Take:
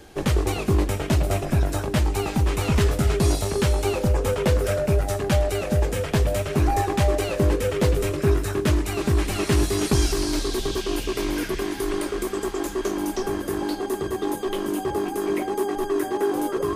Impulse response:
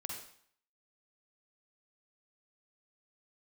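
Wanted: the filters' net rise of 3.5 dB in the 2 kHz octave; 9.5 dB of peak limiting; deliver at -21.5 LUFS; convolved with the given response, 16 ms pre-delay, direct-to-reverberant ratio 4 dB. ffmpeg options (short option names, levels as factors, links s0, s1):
-filter_complex "[0:a]equalizer=f=2000:t=o:g=4.5,alimiter=limit=0.126:level=0:latency=1,asplit=2[s0][s1];[1:a]atrim=start_sample=2205,adelay=16[s2];[s1][s2]afir=irnorm=-1:irlink=0,volume=0.708[s3];[s0][s3]amix=inputs=2:normalize=0,volume=1.68"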